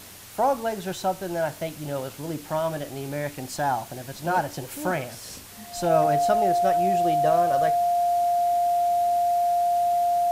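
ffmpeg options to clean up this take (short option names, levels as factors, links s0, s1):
-af "adeclick=t=4,bandreject=f=96.7:t=h:w=4,bandreject=f=193.4:t=h:w=4,bandreject=f=290.1:t=h:w=4,bandreject=f=700:w=30,afwtdn=0.0063"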